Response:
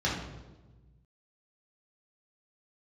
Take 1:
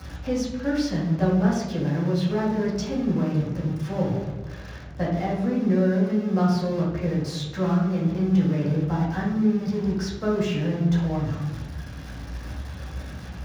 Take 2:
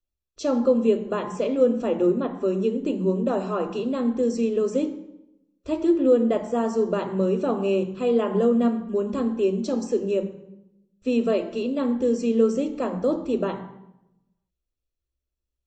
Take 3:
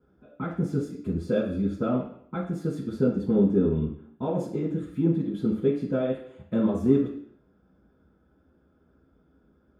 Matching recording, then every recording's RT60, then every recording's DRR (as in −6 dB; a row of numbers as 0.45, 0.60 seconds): 1; 1.2, 0.85, 0.65 seconds; −6.5, 7.0, −8.5 decibels